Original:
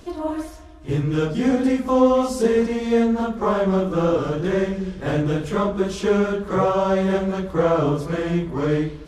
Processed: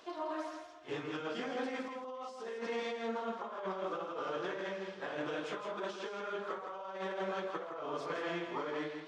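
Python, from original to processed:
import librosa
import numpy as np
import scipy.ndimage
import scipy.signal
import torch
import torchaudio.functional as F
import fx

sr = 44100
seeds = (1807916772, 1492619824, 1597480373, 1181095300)

y = scipy.signal.sosfilt(scipy.signal.butter(2, 1400.0, 'highpass', fs=sr, output='sos'), x)
y = fx.peak_eq(y, sr, hz=1900.0, db=-9.5, octaves=2.0)
y = fx.over_compress(y, sr, threshold_db=-44.0, ratio=-1.0)
y = fx.spacing_loss(y, sr, db_at_10k=34)
y = y + 10.0 ** (-6.5 / 20.0) * np.pad(y, (int(163 * sr / 1000.0), 0))[:len(y)]
y = F.gain(torch.from_numpy(y), 7.0).numpy()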